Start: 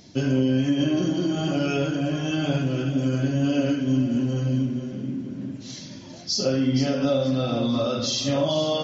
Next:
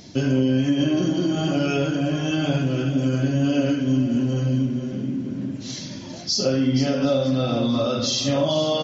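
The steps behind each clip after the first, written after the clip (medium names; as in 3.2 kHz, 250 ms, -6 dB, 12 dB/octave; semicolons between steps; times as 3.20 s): in parallel at -1 dB: compression, threshold -32 dBFS, peak gain reduction 13.5 dB; on the sum: delay 743 ms -24 dB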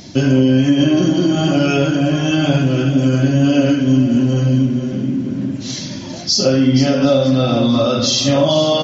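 band-stop 450 Hz, Q 12; trim +7.5 dB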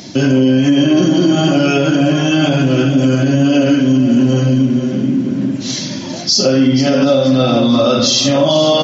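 peak limiter -8 dBFS, peak gain reduction 6.5 dB; high-pass 140 Hz; trim +5 dB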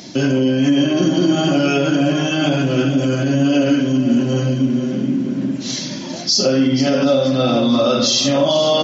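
peaking EQ 100 Hz -9 dB 0.41 oct; de-hum 51.63 Hz, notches 6; trim -3 dB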